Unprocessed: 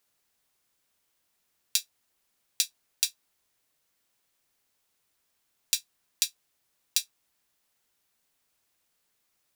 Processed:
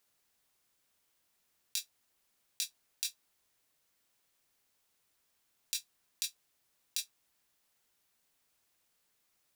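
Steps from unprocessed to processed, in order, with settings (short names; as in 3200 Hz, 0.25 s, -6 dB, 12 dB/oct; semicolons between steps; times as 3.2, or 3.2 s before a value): negative-ratio compressor -28 dBFS, ratio -1; gain -5 dB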